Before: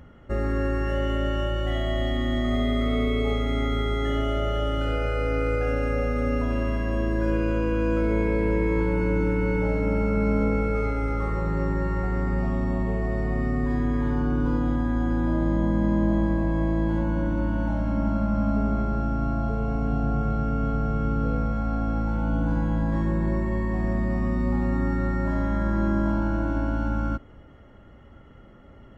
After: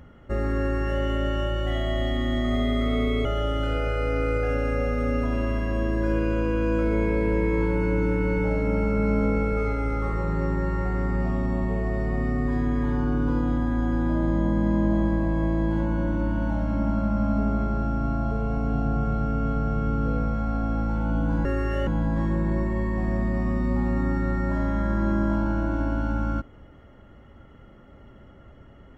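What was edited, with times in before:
0.61–1.03 copy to 22.63
3.25–4.43 cut

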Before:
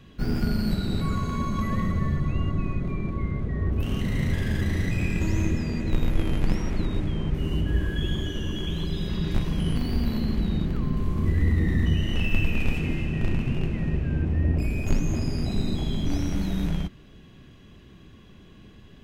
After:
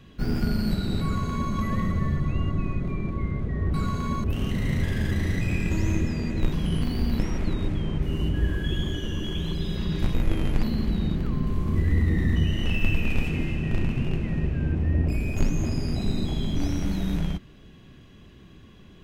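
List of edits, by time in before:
1.03–1.53 copy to 3.74
6.02–6.51 swap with 9.46–10.13

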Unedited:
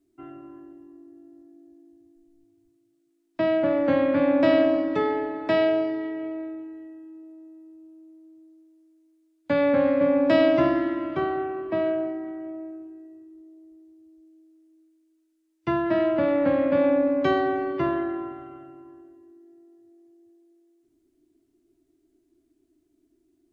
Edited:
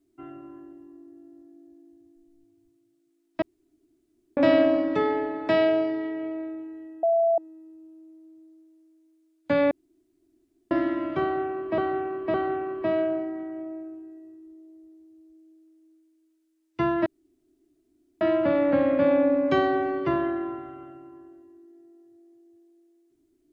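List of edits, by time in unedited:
3.42–4.37 room tone
7.03–7.38 bleep 668 Hz -18 dBFS
9.71–10.71 room tone
11.22–11.78 loop, 3 plays
15.94 insert room tone 1.15 s

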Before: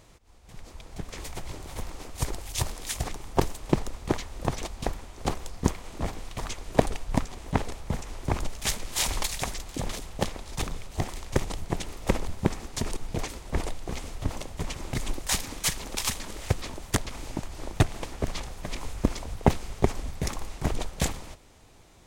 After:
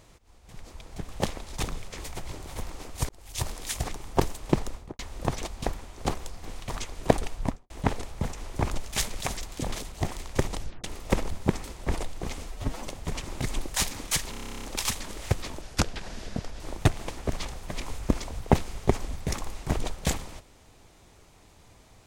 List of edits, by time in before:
2.29–2.71 fade in
3.91–4.19 studio fade out
5.63–6.12 cut
7.04–7.39 studio fade out
8.89–9.37 cut
10.09–10.89 move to 1.1
11.56 tape stop 0.25 s
12.61–13.3 cut
14.12–14.39 stretch 1.5×
15.83 stutter 0.03 s, 12 plays
16.81–17.55 speed 75%

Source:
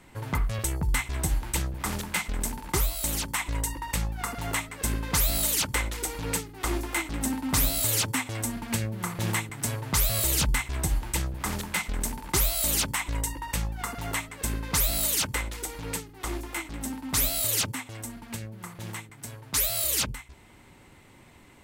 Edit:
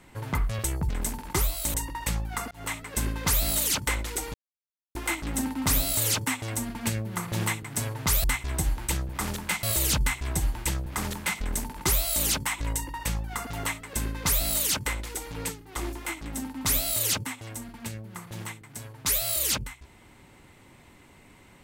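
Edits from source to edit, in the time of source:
0.89–2.28 move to 10.11
3.13–3.61 cut
4.38–4.66 fade in
6.21–6.82 mute

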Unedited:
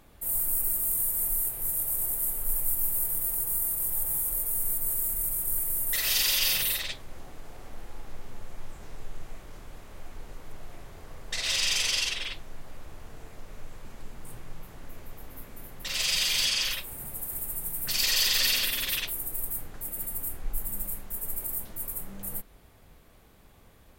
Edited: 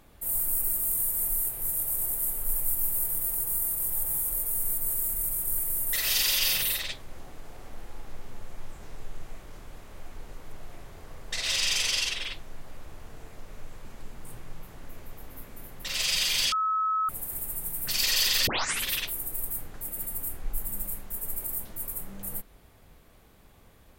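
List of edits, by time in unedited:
16.52–17.09 bleep 1290 Hz -23.5 dBFS
18.47 tape start 0.39 s

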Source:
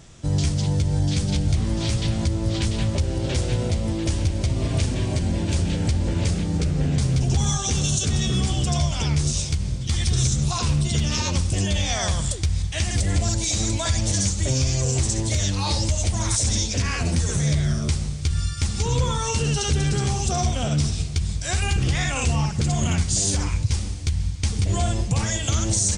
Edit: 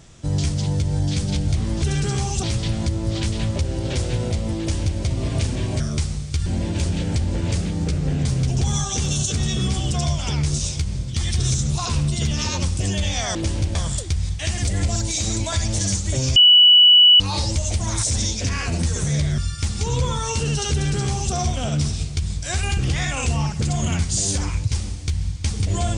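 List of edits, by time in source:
3.98–4.38 copy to 12.08
14.69–15.53 bleep 2950 Hz -7.5 dBFS
17.71–18.37 move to 5.19
19.71–20.32 copy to 1.82

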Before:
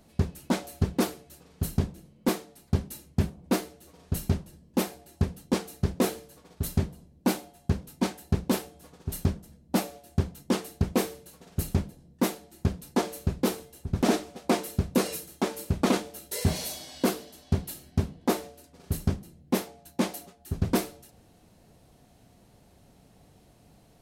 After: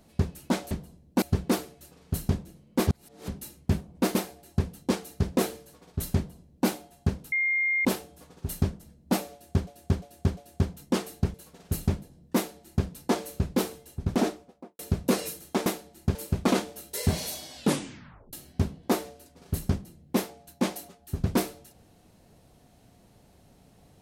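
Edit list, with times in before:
2.36–2.77 reverse
3.64–4.78 cut
6.8–7.31 copy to 0.71
7.95–8.48 bleep 2120 Hz -22.5 dBFS
9.95–10.3 loop, 4 plays
10.92–11.21 cut
12.23–12.72 copy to 15.53
13.88–14.66 studio fade out
16.94 tape stop 0.77 s

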